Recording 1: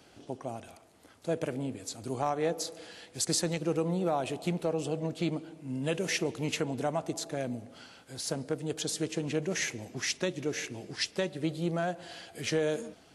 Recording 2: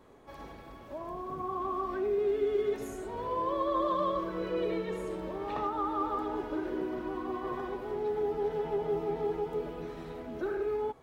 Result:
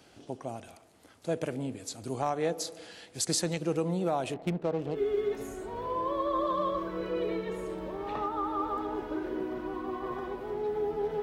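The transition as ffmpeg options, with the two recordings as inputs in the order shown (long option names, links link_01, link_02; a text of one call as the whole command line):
ffmpeg -i cue0.wav -i cue1.wav -filter_complex "[0:a]asettb=1/sr,asplit=3[link_01][link_02][link_03];[link_01]atrim=end=4.344[link_04];[link_02]atrim=start=4.34:end=4.99,asetpts=PTS-STARTPTS,afade=type=in:duration=0.004:curve=qsin,afade=type=out:start_time=0.646:duration=0.004:curve=qsin,adynamicsmooth=sensitivity=8:basefreq=550[link_05];[link_03]atrim=start=4.986[link_06];[link_04][link_05]acrossfade=duration=0.004:curve1=hsin:curve2=qsin[link_07];[link_07][link_06]acrossfade=duration=0.004:curve1=qsin:curve2=hsin,apad=whole_dur=11.22,atrim=end=11.22,atrim=end=4.99,asetpts=PTS-STARTPTS[link_08];[1:a]atrim=start=2.32:end=8.63,asetpts=PTS-STARTPTS[link_09];[link_08][link_09]acrossfade=duration=0.08:curve1=tri:curve2=tri" out.wav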